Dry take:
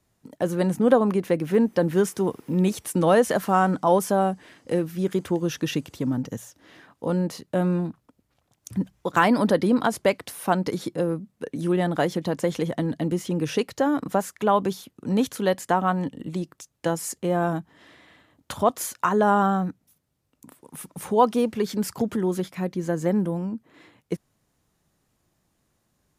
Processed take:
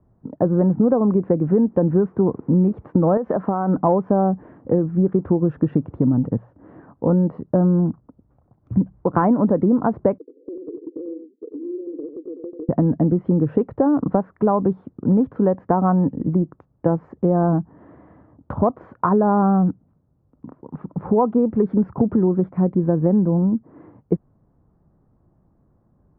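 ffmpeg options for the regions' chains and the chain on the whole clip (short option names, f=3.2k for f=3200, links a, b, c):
-filter_complex "[0:a]asettb=1/sr,asplit=3[a][b][c];[a]atrim=end=3.174[d];[b]atrim=start=3.17:end=3.77,asetpts=PTS-STARTPTS,afade=t=in:d=0.004:c=qsin,afade=t=out:st=0.596:d=0.004:c=qsin,highpass=f=240:p=1,acompressor=threshold=-22dB:ratio=10:attack=3.2:release=140:knee=1:detection=peak[e];[c]atrim=start=3.766[f];[d][e]acrossfade=d=0.004:c1=hsin:c2=qsin[g];[g][f]acrossfade=d=0.004:c1=qsin:c2=hsin,asettb=1/sr,asplit=3[h][i][j];[h]atrim=end=10.184[k];[i]atrim=start=10.18:end=12.69,asetpts=PTS-STARTPTS,afade=t=in:d=0.004:c=qsin,afade=t=out:st=2.506:d=0.004:c=qsin,asuperpass=centerf=370:order=12:qfactor=1.7,acompressor=threshold=-40dB:ratio=5:attack=3.2:release=140:knee=1:detection=peak,aecho=1:1:91:0.398,atrim=end_sample=110691[l];[j]atrim=start=12.686[m];[k][l]acrossfade=d=0.004:c1=hsin:c2=qsin[n];[n][m]acrossfade=d=0.004:c1=qsin:c2=hsin,lowpass=f=1.2k:w=0.5412,lowpass=f=1.2k:w=1.3066,lowshelf=f=420:g=9.5,acompressor=threshold=-18dB:ratio=6,volume=4.5dB"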